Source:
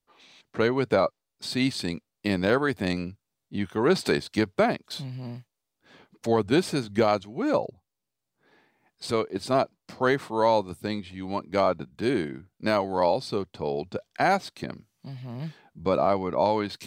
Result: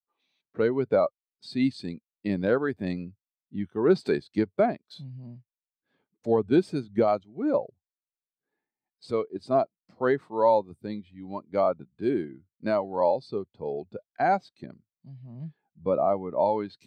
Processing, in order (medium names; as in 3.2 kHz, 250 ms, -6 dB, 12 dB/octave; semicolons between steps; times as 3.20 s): 15.44–16.39 s: treble shelf 5.8 kHz -11 dB; spectral contrast expander 1.5:1